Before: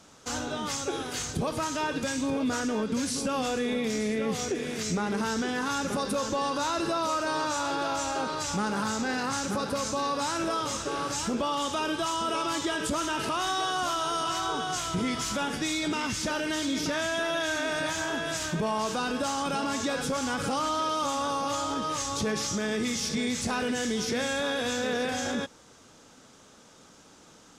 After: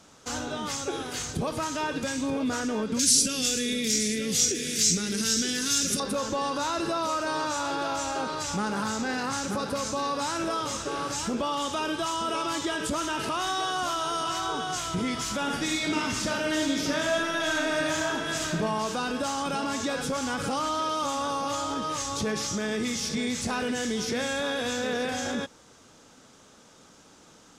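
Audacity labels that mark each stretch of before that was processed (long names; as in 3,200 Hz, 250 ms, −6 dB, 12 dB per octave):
2.990000	6.000000	drawn EQ curve 260 Hz 0 dB, 480 Hz −4 dB, 910 Hz −21 dB, 1,500 Hz −3 dB, 5,700 Hz +14 dB
15.400000	18.590000	thrown reverb, RT60 1 s, DRR 2.5 dB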